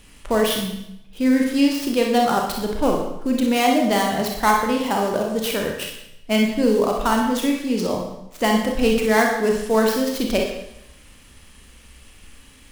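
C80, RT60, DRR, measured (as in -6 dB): 6.0 dB, 0.80 s, 0.0 dB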